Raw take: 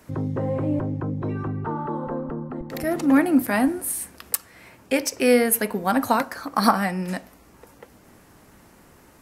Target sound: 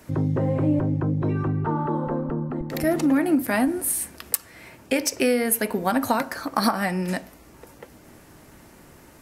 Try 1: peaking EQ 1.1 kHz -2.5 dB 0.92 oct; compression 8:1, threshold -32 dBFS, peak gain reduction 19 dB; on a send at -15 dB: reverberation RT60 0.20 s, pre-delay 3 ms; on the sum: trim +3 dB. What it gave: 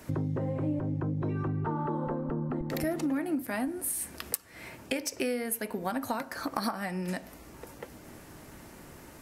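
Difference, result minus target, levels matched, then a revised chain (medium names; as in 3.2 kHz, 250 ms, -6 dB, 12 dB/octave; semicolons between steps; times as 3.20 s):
compression: peak gain reduction +10.5 dB
peaking EQ 1.1 kHz -2.5 dB 0.92 oct; compression 8:1, threshold -20 dBFS, peak gain reduction 8.5 dB; on a send at -15 dB: reverberation RT60 0.20 s, pre-delay 3 ms; on the sum: trim +3 dB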